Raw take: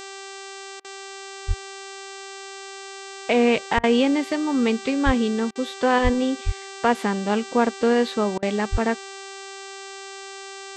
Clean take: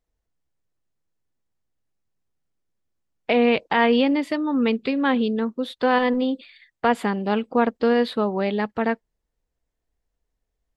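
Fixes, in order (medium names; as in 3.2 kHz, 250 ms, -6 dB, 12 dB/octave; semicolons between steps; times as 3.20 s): de-hum 390.8 Hz, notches 21; de-plosive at 1.47/3.76/5.05/6.03/6.45/8.71 s; interpolate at 0.80/3.79/5.51/8.38 s, 44 ms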